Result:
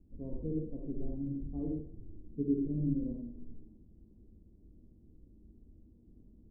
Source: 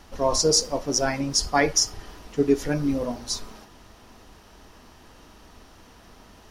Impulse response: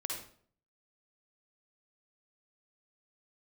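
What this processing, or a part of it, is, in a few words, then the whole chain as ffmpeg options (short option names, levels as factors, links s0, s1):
next room: -filter_complex "[0:a]lowpass=f=310:w=0.5412,lowpass=f=310:w=1.3066[s0];[1:a]atrim=start_sample=2205[s1];[s0][s1]afir=irnorm=-1:irlink=0,asettb=1/sr,asplit=3[s2][s3][s4];[s2]atrim=end=0.564[s5];[s3]atrim=start=0.56:end=1.16,asetpts=PTS-STARTPTS,afade=t=in:d=0.004:c=qsin,afade=t=out:st=0.596:d=0.004:c=qsin,asubboost=boost=11.5:cutoff=69[s6];[s4]atrim=start=1.156[s7];[s5][s6]acrossfade=d=0.004:c1=hsin:c2=qsin[s8];[s8][s7]acrossfade=d=0.004:c1=qsin:c2=hsin,volume=0.473"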